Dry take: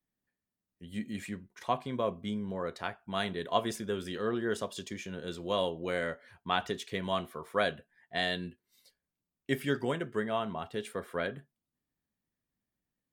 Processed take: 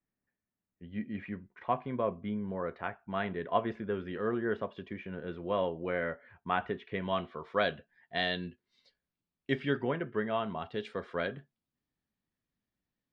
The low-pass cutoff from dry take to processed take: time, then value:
low-pass 24 dB/octave
6.84 s 2.4 kHz
7.53 s 4.6 kHz
9.52 s 4.6 kHz
9.94 s 2.5 kHz
10.94 s 5.1 kHz

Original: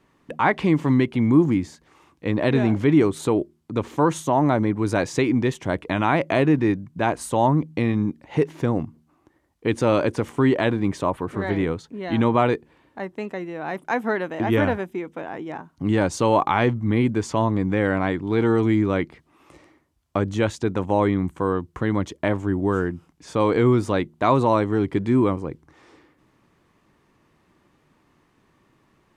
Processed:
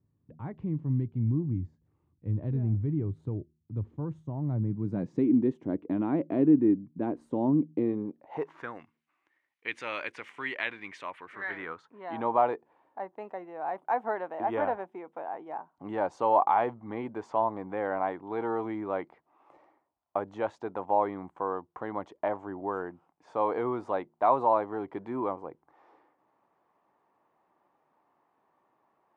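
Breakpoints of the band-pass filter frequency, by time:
band-pass filter, Q 2.5
4.44 s 100 Hz
5.35 s 280 Hz
7.68 s 280 Hz
8.36 s 790 Hz
8.83 s 2.2 kHz
11.23 s 2.2 kHz
12.23 s 790 Hz

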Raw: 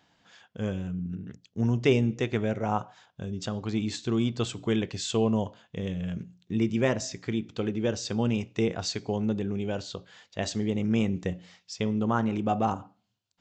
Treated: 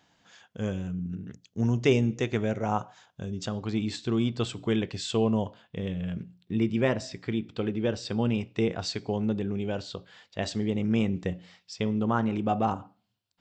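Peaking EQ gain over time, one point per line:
peaking EQ 6.5 kHz 0.31 oct
3.22 s +4.5 dB
3.80 s -7 dB
5.46 s -7 dB
5.93 s -14.5 dB
8.41 s -14.5 dB
8.81 s -7.5 dB

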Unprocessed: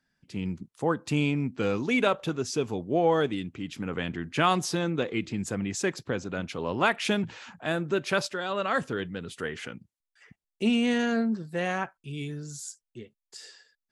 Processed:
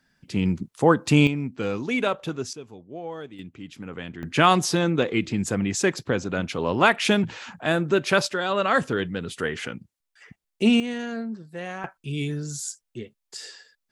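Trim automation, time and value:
+9 dB
from 1.27 s 0 dB
from 2.53 s -12 dB
from 3.39 s -4 dB
from 4.23 s +6 dB
from 10.80 s -5 dB
from 11.84 s +7 dB

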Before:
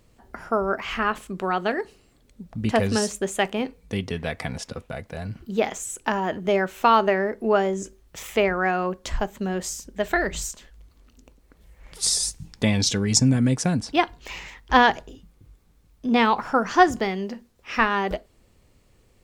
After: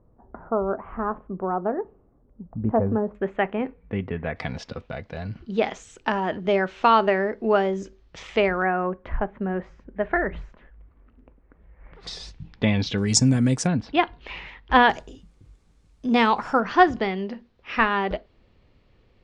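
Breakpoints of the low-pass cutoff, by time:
low-pass 24 dB/octave
1.1 kHz
from 3.15 s 2.2 kHz
from 4.36 s 4.9 kHz
from 8.62 s 2 kHz
from 12.07 s 3.6 kHz
from 12.98 s 9.4 kHz
from 13.67 s 3.7 kHz
from 14.90 s 9 kHz
from 16.60 s 4.2 kHz

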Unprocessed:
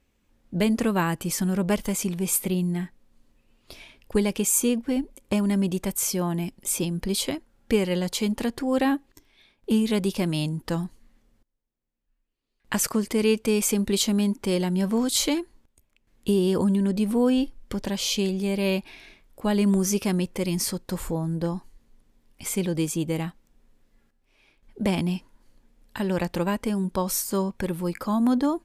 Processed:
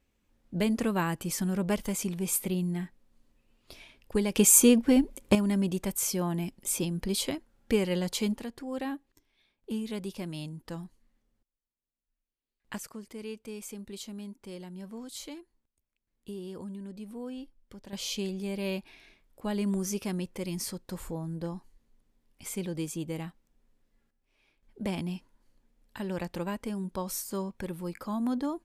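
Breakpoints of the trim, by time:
-5 dB
from 4.36 s +3.5 dB
from 5.35 s -4 dB
from 8.38 s -12 dB
from 12.78 s -18.5 dB
from 17.93 s -8.5 dB

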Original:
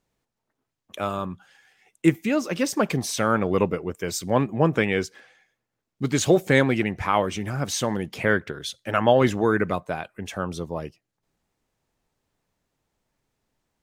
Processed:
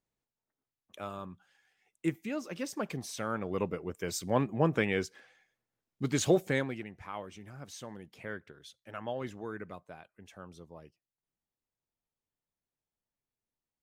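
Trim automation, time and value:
3.41 s -13 dB
4.02 s -7 dB
6.34 s -7 dB
6.88 s -19.5 dB

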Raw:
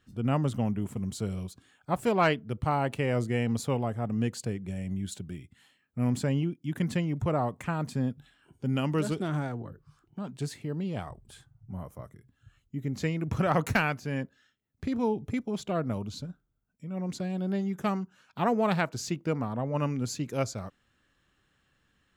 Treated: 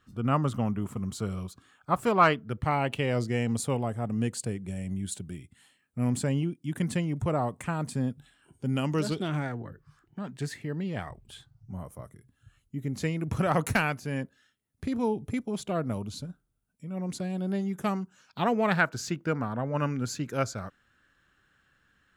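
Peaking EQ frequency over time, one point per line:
peaking EQ +10 dB 0.47 oct
2.39 s 1.2 kHz
3.61 s 9 kHz
8.80 s 9 kHz
9.47 s 1.8 kHz
11.05 s 1.8 kHz
11.93 s 9.8 kHz
18.03 s 9.8 kHz
18.77 s 1.5 kHz

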